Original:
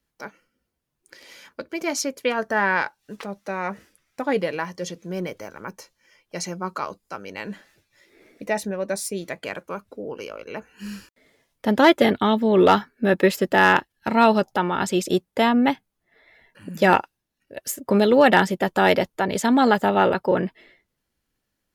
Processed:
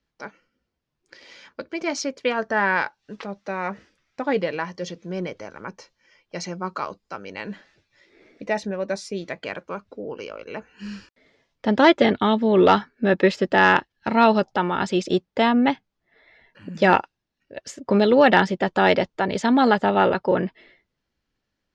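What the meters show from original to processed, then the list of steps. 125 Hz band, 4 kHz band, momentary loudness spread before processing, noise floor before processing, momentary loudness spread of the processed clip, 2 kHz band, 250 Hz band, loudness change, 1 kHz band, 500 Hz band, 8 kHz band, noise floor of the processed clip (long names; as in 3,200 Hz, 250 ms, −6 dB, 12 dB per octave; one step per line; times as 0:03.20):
0.0 dB, 0.0 dB, 20 LU, −79 dBFS, 20 LU, 0.0 dB, 0.0 dB, 0.0 dB, 0.0 dB, 0.0 dB, −7.0 dB, −80 dBFS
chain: low-pass filter 5,800 Hz 24 dB per octave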